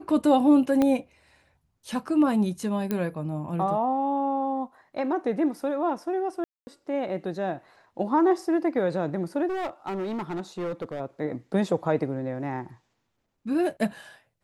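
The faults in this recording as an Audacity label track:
0.820000	0.820000	pop -12 dBFS
2.910000	2.910000	pop -14 dBFS
6.440000	6.670000	dropout 230 ms
9.490000	11.010000	clipped -27 dBFS

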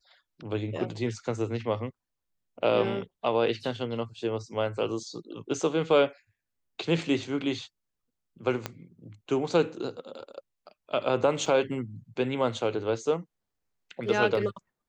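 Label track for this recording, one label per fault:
8.660000	8.660000	pop -15 dBFS
11.460000	11.460000	dropout 3.3 ms

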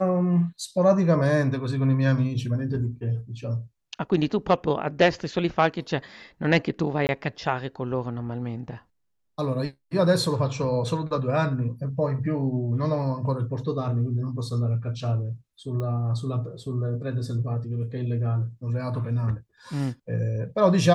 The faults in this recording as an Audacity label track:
7.070000	7.090000	dropout 19 ms
15.800000	15.800000	pop -21 dBFS

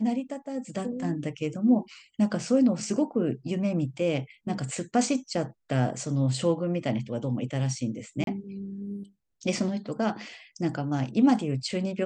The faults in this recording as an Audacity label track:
8.240000	8.270000	dropout 32 ms

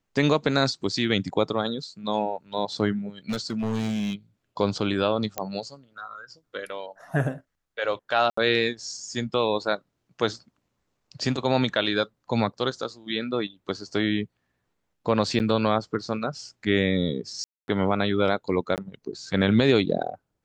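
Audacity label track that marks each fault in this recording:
3.290000	4.140000	clipped -23 dBFS
5.380000	5.380000	pop -12 dBFS
8.300000	8.370000	dropout 74 ms
15.390000	15.400000	dropout 9.3 ms
17.440000	17.680000	dropout 241 ms
18.760000	18.780000	dropout 18 ms

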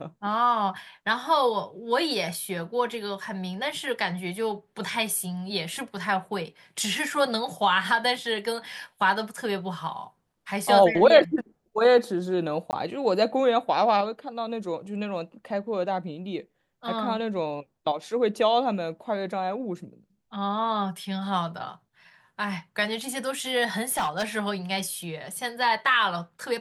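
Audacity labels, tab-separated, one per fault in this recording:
12.710000	12.730000	dropout 19 ms
23.890000	24.240000	clipped -21.5 dBFS

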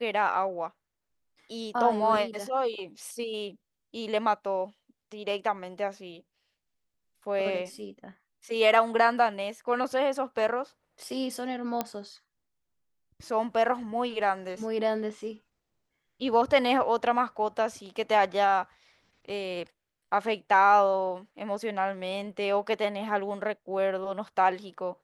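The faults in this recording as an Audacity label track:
11.810000	11.810000	pop -13 dBFS

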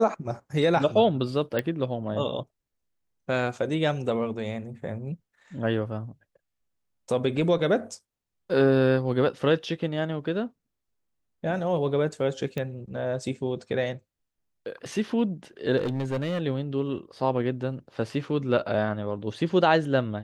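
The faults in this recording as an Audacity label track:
1.590000	1.590000	pop -14 dBFS
12.580000	12.580000	pop -18 dBFS
15.770000	16.400000	clipped -24 dBFS

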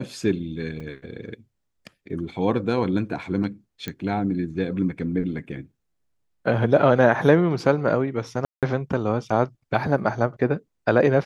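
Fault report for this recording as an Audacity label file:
0.800000	0.800000	dropout 3.3 ms
3.880000	3.880000	pop -15 dBFS
8.450000	8.630000	dropout 177 ms

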